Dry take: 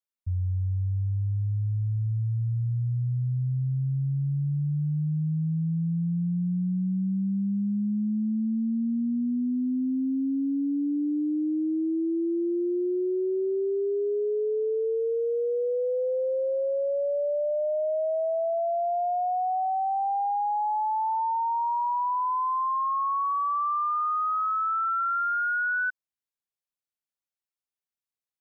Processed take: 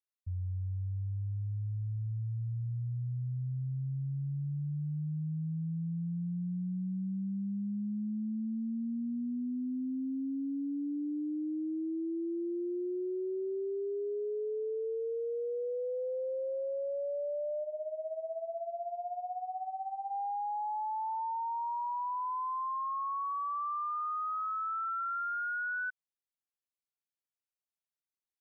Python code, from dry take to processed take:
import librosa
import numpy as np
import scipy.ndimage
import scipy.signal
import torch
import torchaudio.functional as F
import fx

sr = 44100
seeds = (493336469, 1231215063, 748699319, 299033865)

y = fx.tremolo(x, sr, hz=16.0, depth=0.73, at=(17.62, 20.1), fade=0.02)
y = F.gain(torch.from_numpy(y), -8.5).numpy()